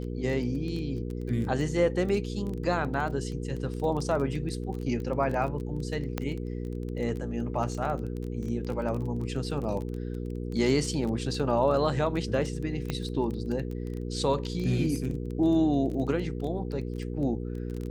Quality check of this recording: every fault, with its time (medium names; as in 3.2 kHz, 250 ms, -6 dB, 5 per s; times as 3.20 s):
crackle 16 per s -33 dBFS
hum 60 Hz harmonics 8 -34 dBFS
6.18 s: pop -15 dBFS
12.90 s: pop -16 dBFS